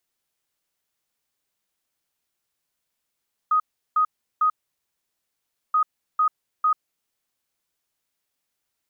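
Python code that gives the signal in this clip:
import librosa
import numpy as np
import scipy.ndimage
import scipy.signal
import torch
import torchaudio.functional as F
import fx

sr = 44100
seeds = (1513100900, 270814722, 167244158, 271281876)

y = fx.beep_pattern(sr, wave='sine', hz=1250.0, on_s=0.09, off_s=0.36, beeps=3, pause_s=1.24, groups=2, level_db=-16.0)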